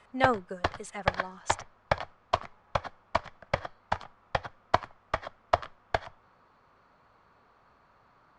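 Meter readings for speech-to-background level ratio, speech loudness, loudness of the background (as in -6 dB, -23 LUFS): -1.5 dB, -35.0 LUFS, -33.5 LUFS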